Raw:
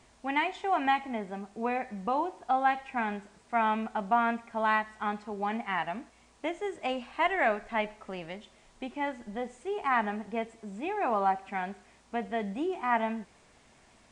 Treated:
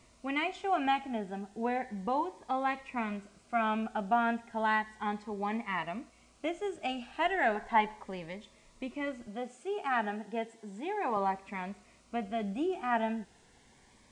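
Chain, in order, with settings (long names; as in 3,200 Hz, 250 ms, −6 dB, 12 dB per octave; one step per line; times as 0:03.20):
0:07.55–0:08.04: parametric band 980 Hz +10.5 dB 1 octave
0:09.27–0:11.17: Bessel high-pass filter 220 Hz, order 2
phaser whose notches keep moving one way rising 0.34 Hz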